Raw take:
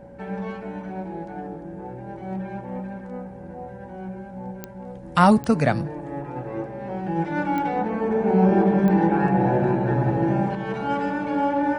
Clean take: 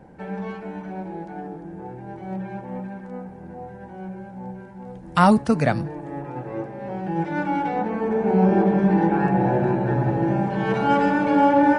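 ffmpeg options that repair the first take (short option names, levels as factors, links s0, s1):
-af "adeclick=t=4,bandreject=f=60.4:t=h:w=4,bandreject=f=120.8:t=h:w=4,bandreject=f=181.2:t=h:w=4,bandreject=f=241.6:t=h:w=4,bandreject=f=560:w=30,asetnsamples=n=441:p=0,asendcmd='10.55 volume volume 6dB',volume=1"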